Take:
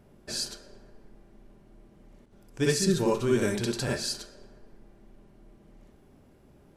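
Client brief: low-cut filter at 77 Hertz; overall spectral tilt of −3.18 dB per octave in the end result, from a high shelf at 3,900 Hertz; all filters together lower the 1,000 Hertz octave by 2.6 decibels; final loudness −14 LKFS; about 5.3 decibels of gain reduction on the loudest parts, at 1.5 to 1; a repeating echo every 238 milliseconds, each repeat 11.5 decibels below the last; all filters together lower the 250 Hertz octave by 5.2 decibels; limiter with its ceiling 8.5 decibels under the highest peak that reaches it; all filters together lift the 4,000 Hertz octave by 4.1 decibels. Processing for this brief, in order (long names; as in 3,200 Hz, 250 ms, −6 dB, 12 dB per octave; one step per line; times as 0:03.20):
high-pass filter 77 Hz
parametric band 250 Hz −7.5 dB
parametric band 1,000 Hz −3 dB
high-shelf EQ 3,900 Hz +3 dB
parametric band 4,000 Hz +3 dB
downward compressor 1.5 to 1, threshold −37 dBFS
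brickwall limiter −26.5 dBFS
repeating echo 238 ms, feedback 27%, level −11.5 dB
level +22.5 dB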